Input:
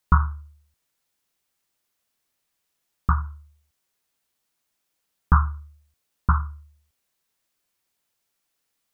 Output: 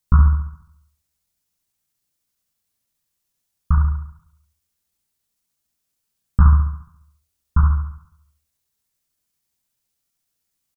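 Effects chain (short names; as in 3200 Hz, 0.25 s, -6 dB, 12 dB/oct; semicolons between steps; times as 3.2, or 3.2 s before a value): tone controls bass +11 dB, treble +7 dB; tempo 0.83×; on a send: flutter echo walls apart 11.9 m, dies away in 0.74 s; on the sum: gain -6.5 dB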